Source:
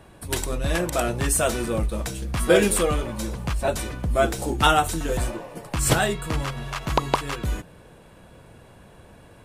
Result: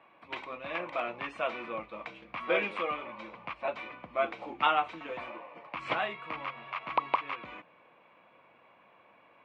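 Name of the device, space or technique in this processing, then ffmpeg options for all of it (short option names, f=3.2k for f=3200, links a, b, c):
phone earpiece: -af "highpass=390,equalizer=f=410:t=q:w=4:g=-8,equalizer=f=1.1k:t=q:w=4:g=8,equalizer=f=1.6k:t=q:w=4:g=-5,equalizer=f=2.3k:t=q:w=4:g=10,lowpass=f=3k:w=0.5412,lowpass=f=3k:w=1.3066,volume=-8.5dB"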